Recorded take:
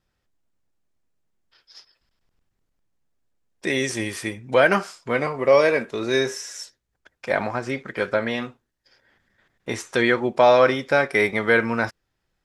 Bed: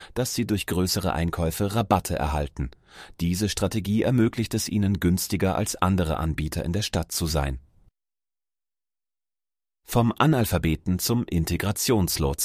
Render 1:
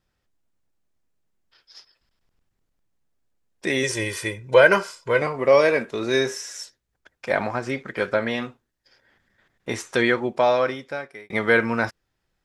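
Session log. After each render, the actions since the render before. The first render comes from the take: 3.83–5.22 s: comb 2 ms, depth 69%; 9.97–11.30 s: fade out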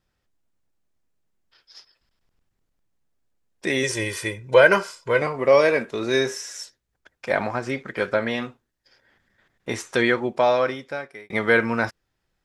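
no audible change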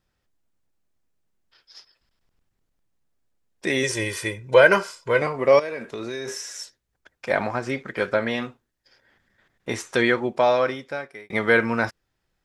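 5.59–6.28 s: compression 5:1, threshold -28 dBFS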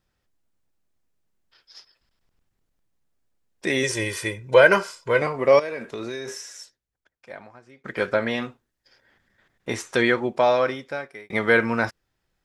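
6.06–7.84 s: fade out quadratic, to -24 dB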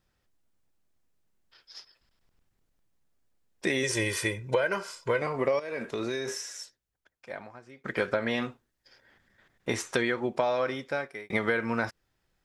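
compression 12:1, threshold -23 dBFS, peak gain reduction 15 dB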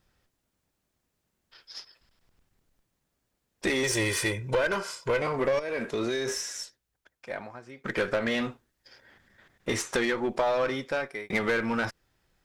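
single-diode clipper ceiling -25 dBFS; in parallel at -3 dB: hard clipper -30 dBFS, distortion -9 dB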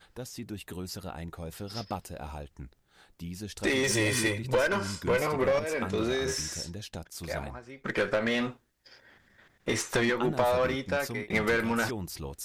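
add bed -14.5 dB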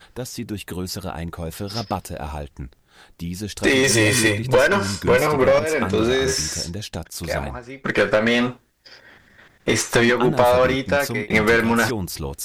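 trim +10 dB

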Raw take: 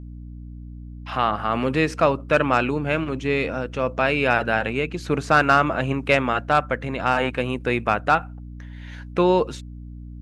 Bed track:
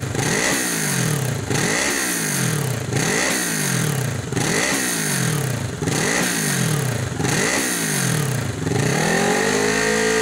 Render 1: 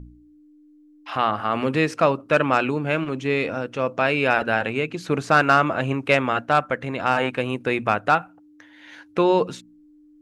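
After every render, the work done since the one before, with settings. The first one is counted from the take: de-hum 60 Hz, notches 4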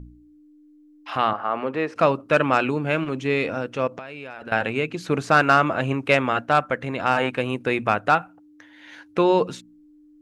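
1.33–1.96 s: band-pass filter 780 Hz, Q 0.73; 3.87–4.52 s: compression 20:1, threshold -31 dBFS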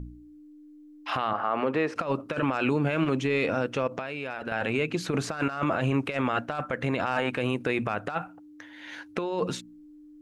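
compressor with a negative ratio -22 dBFS, ratio -0.5; peak limiter -15.5 dBFS, peak gain reduction 10.5 dB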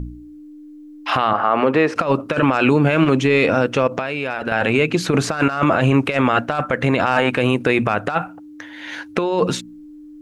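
trim +10.5 dB

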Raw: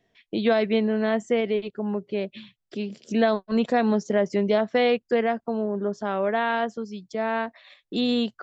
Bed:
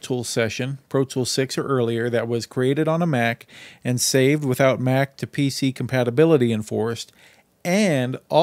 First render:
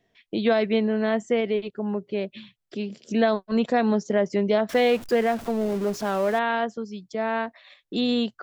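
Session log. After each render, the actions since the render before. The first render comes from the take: 4.69–6.39 s: jump at every zero crossing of -33 dBFS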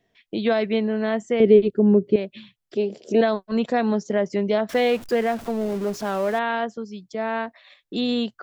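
1.40–2.16 s: resonant low shelf 580 Hz +10.5 dB, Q 1.5; 2.77–3.21 s: high-order bell 550 Hz +12 dB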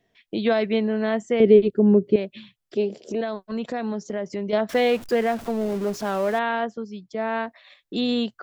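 2.97–4.53 s: compression 2:1, threshold -29 dBFS; 6.49–7.32 s: treble shelf 6 kHz -8.5 dB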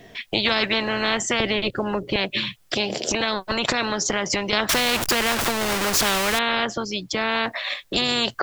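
in parallel at -2 dB: compression, threshold -26 dBFS, peak gain reduction 16 dB; on the sum: spectrum-flattening compressor 4:1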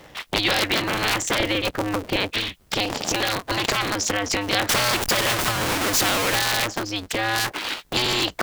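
cycle switcher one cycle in 2, inverted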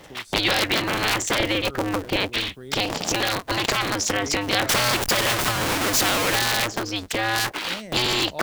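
add bed -20 dB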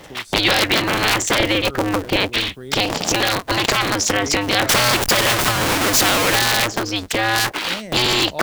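trim +5 dB; peak limiter -1 dBFS, peak gain reduction 2.5 dB

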